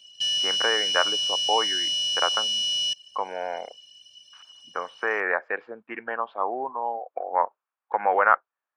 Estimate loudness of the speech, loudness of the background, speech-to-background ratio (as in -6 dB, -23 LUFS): -27.5 LUFS, -23.0 LUFS, -4.5 dB